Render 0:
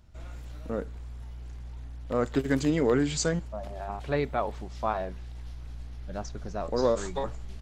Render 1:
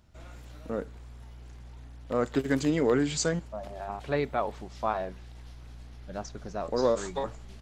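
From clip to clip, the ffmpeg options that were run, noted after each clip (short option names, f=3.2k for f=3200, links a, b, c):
-af "lowshelf=f=71:g=-10.5"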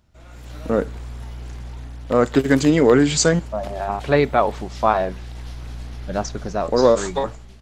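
-af "dynaudnorm=f=130:g=7:m=13.5dB"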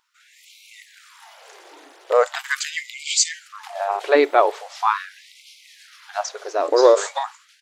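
-af "afftfilt=real='re*gte(b*sr/1024,290*pow(2100/290,0.5+0.5*sin(2*PI*0.41*pts/sr)))':imag='im*gte(b*sr/1024,290*pow(2100/290,0.5+0.5*sin(2*PI*0.41*pts/sr)))':win_size=1024:overlap=0.75,volume=2dB"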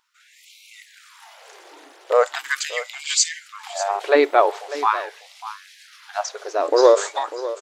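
-af "aecho=1:1:596:0.188"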